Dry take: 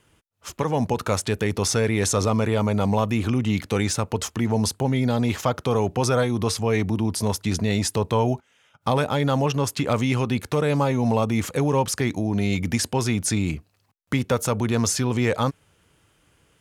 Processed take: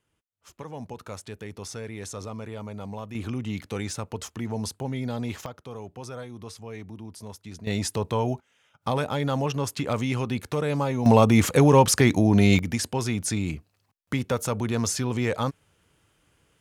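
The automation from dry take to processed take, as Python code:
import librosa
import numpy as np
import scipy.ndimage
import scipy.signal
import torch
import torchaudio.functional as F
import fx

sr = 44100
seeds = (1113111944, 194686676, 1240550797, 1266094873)

y = fx.gain(x, sr, db=fx.steps((0.0, -15.0), (3.15, -8.5), (5.46, -17.0), (7.67, -4.5), (11.06, 5.0), (12.59, -4.0)))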